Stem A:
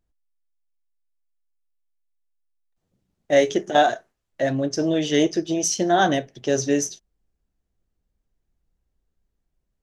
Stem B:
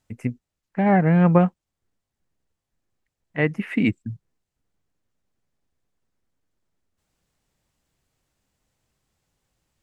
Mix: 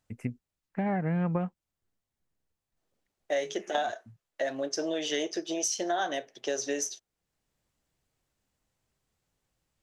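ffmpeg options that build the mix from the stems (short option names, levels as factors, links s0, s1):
-filter_complex "[0:a]highpass=470,volume=0.794,asplit=2[s0][s1];[1:a]volume=0.531[s2];[s1]apad=whole_len=433289[s3];[s2][s3]sidechaincompress=threshold=0.0141:ratio=8:attack=41:release=705[s4];[s0][s4]amix=inputs=2:normalize=0,acompressor=threshold=0.0447:ratio=5"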